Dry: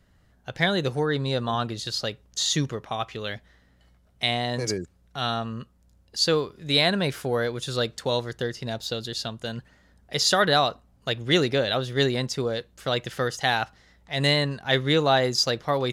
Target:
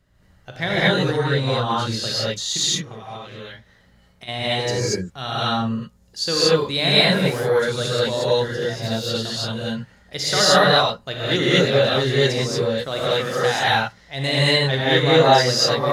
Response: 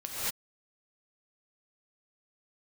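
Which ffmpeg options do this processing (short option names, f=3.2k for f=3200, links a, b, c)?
-filter_complex "[0:a]asplit=3[a][b][c];[a]afade=t=out:st=2.56:d=0.02[d];[b]acompressor=threshold=-37dB:ratio=10,afade=t=in:st=2.56:d=0.02,afade=t=out:st=4.27:d=0.02[e];[c]afade=t=in:st=4.27:d=0.02[f];[d][e][f]amix=inputs=3:normalize=0,asettb=1/sr,asplit=3[g][h][i];[g]atrim=end=12.884[j];[h]atrim=start=12.88:end=13.55,asetpts=PTS-STARTPTS,afade=t=in:d=0.004:c=qsin,afade=t=out:st=0.666:d=0.004:c=qsin,highpass=130[k];[i]atrim=start=13.546[l];[j][k]acrossfade=d=0.004:c1=hsin:c2=qsin[m];[m][l]acrossfade=d=0.004:c1=qsin:c2=hsin[n];[1:a]atrim=start_sample=2205[o];[n][o]afir=irnorm=-1:irlink=0"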